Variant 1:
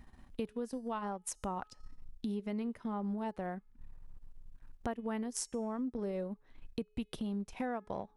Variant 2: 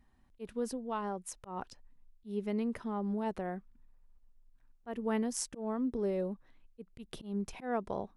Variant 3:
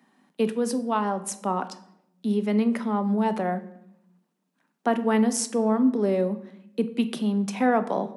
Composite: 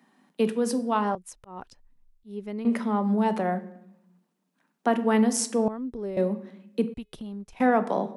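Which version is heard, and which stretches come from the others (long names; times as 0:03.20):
3
0:01.15–0:02.65: punch in from 2
0:05.68–0:06.17: punch in from 2
0:06.94–0:07.60: punch in from 1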